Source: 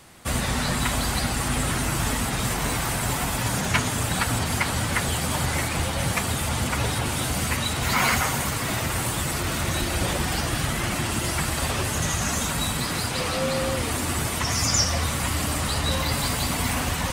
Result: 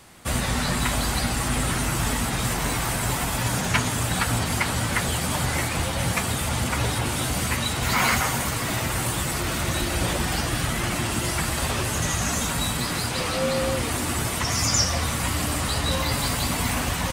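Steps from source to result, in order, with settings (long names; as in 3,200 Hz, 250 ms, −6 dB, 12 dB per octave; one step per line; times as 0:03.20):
double-tracking delay 17 ms −12 dB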